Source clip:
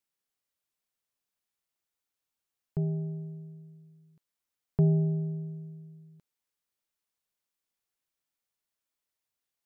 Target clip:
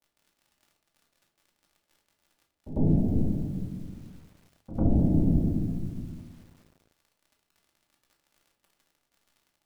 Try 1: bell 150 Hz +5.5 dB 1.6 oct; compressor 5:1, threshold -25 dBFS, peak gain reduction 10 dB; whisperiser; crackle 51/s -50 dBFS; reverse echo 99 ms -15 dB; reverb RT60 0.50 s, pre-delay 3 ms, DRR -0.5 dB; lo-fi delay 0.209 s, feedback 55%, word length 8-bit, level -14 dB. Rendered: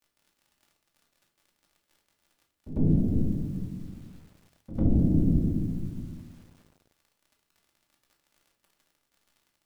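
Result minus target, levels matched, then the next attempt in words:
1000 Hz band -7.5 dB
synth low-pass 750 Hz, resonance Q 3.4; bell 150 Hz +5.5 dB 1.6 oct; compressor 5:1, threshold -25 dBFS, peak gain reduction 10.5 dB; whisperiser; crackle 51/s -50 dBFS; reverse echo 99 ms -15 dB; reverb RT60 0.50 s, pre-delay 3 ms, DRR -0.5 dB; lo-fi delay 0.209 s, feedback 55%, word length 8-bit, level -14 dB

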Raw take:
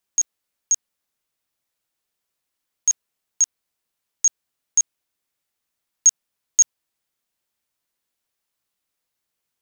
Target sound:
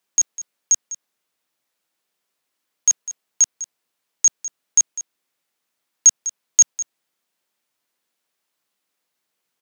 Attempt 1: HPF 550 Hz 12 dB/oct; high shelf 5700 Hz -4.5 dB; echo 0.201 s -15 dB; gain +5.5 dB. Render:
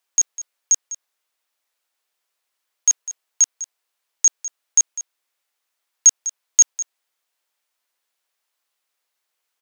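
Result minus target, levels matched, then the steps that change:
250 Hz band -11.0 dB
change: HPF 180 Hz 12 dB/oct

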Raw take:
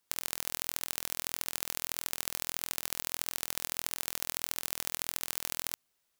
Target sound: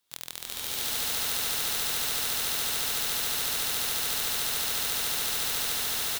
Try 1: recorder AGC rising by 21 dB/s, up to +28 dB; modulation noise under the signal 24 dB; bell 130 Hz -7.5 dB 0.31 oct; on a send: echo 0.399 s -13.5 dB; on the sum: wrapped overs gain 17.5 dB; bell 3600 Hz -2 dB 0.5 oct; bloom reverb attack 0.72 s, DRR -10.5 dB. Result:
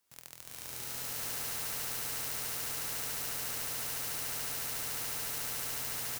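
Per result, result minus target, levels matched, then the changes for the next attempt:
4000 Hz band -4.5 dB; wrapped overs: distortion -4 dB
change: second bell 3600 Hz +7.5 dB 0.5 oct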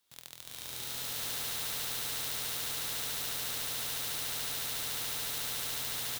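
wrapped overs: distortion -4 dB
change: wrapped overs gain 8.5 dB

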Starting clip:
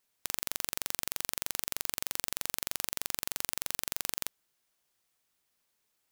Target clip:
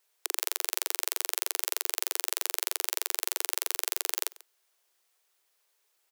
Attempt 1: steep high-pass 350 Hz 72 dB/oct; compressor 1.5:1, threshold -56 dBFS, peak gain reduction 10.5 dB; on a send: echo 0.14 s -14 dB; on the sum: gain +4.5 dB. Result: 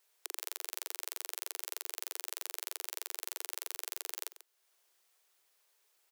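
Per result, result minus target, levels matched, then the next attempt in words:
compressor: peak gain reduction +10.5 dB; echo-to-direct +7 dB
steep high-pass 350 Hz 72 dB/oct; on a send: echo 0.14 s -14 dB; on the sum: gain +4.5 dB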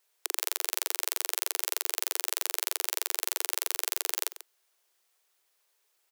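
echo-to-direct +7 dB
steep high-pass 350 Hz 72 dB/oct; on a send: echo 0.14 s -21 dB; on the sum: gain +4.5 dB

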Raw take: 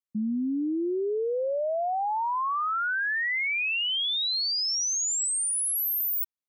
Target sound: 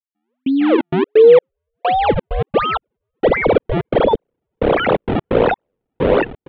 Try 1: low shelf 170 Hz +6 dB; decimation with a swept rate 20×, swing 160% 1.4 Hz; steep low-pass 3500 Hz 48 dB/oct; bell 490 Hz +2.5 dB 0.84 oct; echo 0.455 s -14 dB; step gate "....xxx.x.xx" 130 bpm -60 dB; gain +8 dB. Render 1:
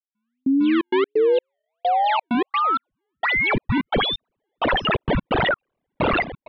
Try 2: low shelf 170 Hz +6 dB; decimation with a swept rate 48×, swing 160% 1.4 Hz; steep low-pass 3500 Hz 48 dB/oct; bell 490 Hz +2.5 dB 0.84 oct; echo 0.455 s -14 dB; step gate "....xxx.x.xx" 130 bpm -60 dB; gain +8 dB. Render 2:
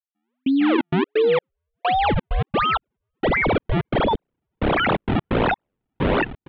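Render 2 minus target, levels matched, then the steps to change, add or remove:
500 Hz band -4.0 dB
change: bell 490 Hz +14 dB 0.84 oct

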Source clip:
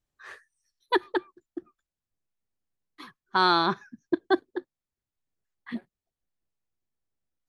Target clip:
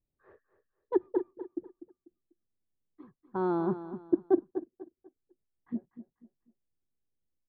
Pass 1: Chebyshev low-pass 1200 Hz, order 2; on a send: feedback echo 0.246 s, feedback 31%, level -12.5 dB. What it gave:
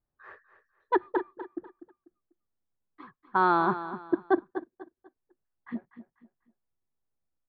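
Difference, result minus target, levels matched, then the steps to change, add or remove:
1000 Hz band +9.0 dB
change: Chebyshev low-pass 430 Hz, order 2

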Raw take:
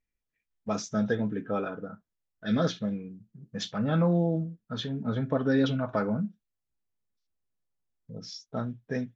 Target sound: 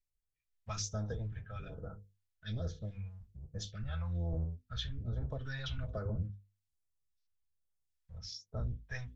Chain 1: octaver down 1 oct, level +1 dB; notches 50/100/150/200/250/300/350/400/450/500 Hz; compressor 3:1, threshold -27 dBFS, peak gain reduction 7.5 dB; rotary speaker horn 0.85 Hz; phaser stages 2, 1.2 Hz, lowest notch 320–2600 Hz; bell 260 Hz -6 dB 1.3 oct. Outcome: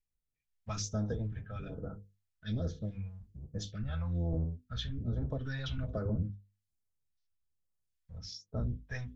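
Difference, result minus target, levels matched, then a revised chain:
250 Hz band +4.5 dB
octaver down 1 oct, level +1 dB; notches 50/100/150/200/250/300/350/400/450/500 Hz; compressor 3:1, threshold -27 dBFS, peak gain reduction 7.5 dB; rotary speaker horn 0.85 Hz; phaser stages 2, 1.2 Hz, lowest notch 320–2600 Hz; bell 260 Hz -16.5 dB 1.3 oct

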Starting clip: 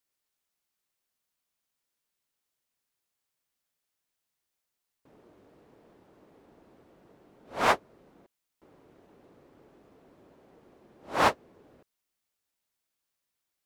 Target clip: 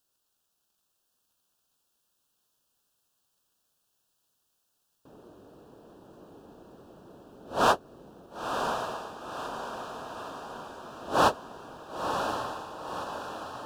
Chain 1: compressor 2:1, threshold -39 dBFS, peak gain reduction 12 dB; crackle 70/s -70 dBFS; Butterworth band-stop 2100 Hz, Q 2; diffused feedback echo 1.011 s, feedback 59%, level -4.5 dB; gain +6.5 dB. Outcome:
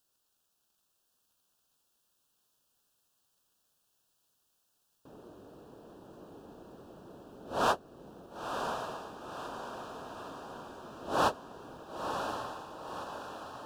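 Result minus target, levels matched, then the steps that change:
compressor: peak gain reduction +5.5 dB
change: compressor 2:1, threshold -28 dBFS, peak gain reduction 6.5 dB

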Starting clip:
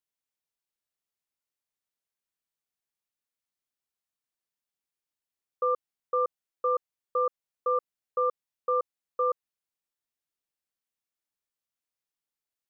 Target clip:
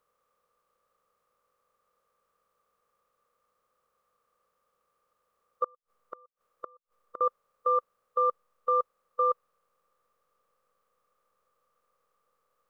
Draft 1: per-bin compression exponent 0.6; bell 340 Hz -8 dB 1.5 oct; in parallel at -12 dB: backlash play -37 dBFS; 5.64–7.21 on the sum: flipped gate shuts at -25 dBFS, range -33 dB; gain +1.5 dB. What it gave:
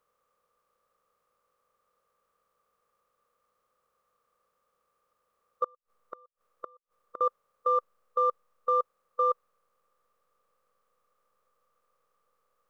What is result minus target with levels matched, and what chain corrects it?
backlash: distortion +8 dB
per-bin compression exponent 0.6; bell 340 Hz -8 dB 1.5 oct; in parallel at -12 dB: backlash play -46 dBFS; 5.64–7.21 on the sum: flipped gate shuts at -25 dBFS, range -33 dB; gain +1.5 dB

